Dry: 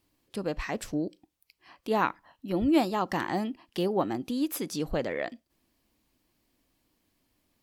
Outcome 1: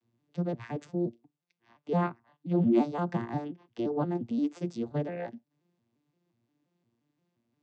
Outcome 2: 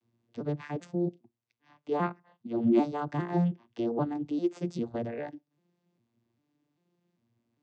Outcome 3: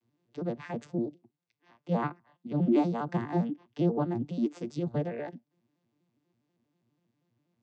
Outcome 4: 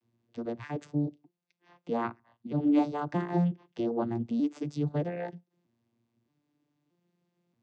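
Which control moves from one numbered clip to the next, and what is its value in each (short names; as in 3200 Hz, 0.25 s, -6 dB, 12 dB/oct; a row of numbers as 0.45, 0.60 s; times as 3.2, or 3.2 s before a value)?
arpeggiated vocoder, a note every: 175, 398, 81, 627 ms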